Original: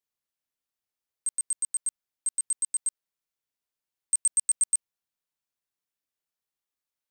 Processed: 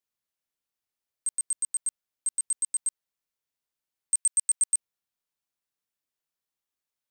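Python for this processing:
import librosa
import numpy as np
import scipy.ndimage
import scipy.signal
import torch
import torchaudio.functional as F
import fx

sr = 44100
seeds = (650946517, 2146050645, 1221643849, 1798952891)

y = fx.highpass(x, sr, hz=fx.line((4.16, 1200.0), (4.75, 500.0)), slope=12, at=(4.16, 4.75), fade=0.02)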